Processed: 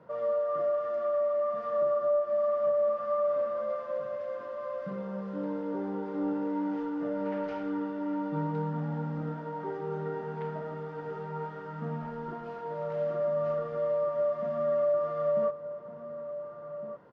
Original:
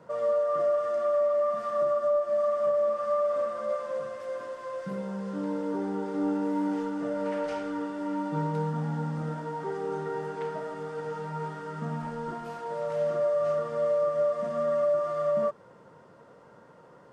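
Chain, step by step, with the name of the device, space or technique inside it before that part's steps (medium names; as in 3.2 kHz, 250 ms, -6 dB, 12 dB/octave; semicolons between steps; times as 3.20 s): shout across a valley (distance through air 210 m; echo from a far wall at 250 m, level -9 dB); trim -2.5 dB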